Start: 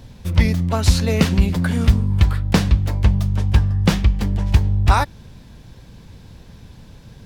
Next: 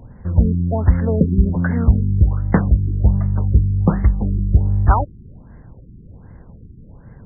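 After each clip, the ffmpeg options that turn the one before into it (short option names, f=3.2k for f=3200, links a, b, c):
-af "afftfilt=real='re*lt(b*sr/1024,400*pow(2200/400,0.5+0.5*sin(2*PI*1.3*pts/sr)))':imag='im*lt(b*sr/1024,400*pow(2200/400,0.5+0.5*sin(2*PI*1.3*pts/sr)))':win_size=1024:overlap=0.75,volume=1dB"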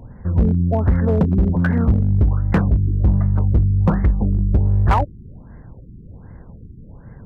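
-af "volume=11.5dB,asoftclip=hard,volume=-11.5dB,volume=1.5dB"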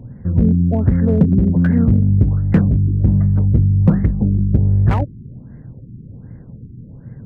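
-af "equalizer=f=125:t=o:w=1:g=12,equalizer=f=250:t=o:w=1:g=8,equalizer=f=500:t=o:w=1:g=4,equalizer=f=1k:t=o:w=1:g=-5,equalizer=f=2k:t=o:w=1:g=4,volume=-5.5dB"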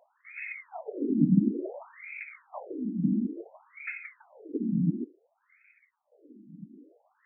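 -af "acrusher=samples=19:mix=1:aa=0.000001,afftfilt=real='hypot(re,im)*cos(2*PI*random(0))':imag='hypot(re,im)*sin(2*PI*random(1))':win_size=512:overlap=0.75,afftfilt=real='re*between(b*sr/1024,230*pow(1900/230,0.5+0.5*sin(2*PI*0.57*pts/sr))/1.41,230*pow(1900/230,0.5+0.5*sin(2*PI*0.57*pts/sr))*1.41)':imag='im*between(b*sr/1024,230*pow(1900/230,0.5+0.5*sin(2*PI*0.57*pts/sr))/1.41,230*pow(1900/230,0.5+0.5*sin(2*PI*0.57*pts/sr))*1.41)':win_size=1024:overlap=0.75"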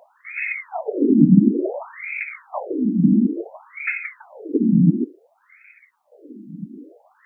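-filter_complex "[0:a]asplit=2[a][b];[b]alimiter=limit=-18.5dB:level=0:latency=1:release=186,volume=1.5dB[c];[a][c]amix=inputs=2:normalize=0,highpass=100,volume=6dB"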